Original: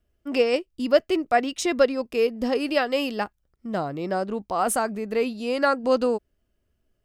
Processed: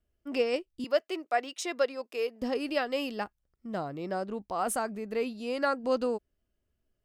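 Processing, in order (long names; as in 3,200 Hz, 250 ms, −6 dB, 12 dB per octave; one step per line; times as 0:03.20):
0:00.84–0:02.42: high-pass filter 440 Hz 12 dB per octave
level −7 dB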